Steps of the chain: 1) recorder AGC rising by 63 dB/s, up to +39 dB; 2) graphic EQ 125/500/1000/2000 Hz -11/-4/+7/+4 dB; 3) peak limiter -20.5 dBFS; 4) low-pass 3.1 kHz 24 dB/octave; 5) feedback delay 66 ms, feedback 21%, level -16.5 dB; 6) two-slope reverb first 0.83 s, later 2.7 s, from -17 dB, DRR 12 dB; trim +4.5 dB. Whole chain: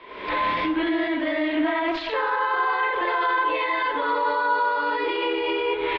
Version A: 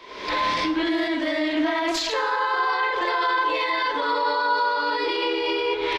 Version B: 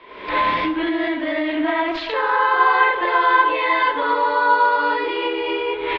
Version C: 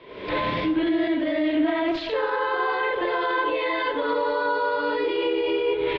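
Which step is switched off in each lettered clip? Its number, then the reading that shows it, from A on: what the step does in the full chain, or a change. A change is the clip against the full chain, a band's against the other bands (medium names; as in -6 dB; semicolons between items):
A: 4, 4 kHz band +5.5 dB; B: 3, mean gain reduction 3.5 dB; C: 2, 500 Hz band +5.0 dB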